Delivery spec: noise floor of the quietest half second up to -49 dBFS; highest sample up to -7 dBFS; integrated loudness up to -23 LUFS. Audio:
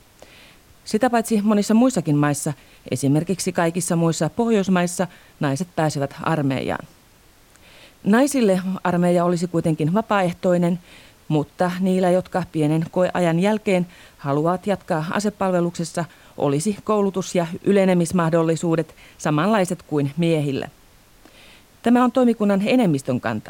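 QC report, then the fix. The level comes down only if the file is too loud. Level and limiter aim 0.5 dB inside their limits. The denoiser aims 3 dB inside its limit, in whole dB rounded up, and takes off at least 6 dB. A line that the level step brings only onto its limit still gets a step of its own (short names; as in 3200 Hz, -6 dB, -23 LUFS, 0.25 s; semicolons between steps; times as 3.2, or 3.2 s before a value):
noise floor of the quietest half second -52 dBFS: OK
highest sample -6.0 dBFS: fail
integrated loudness -20.5 LUFS: fail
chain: gain -3 dB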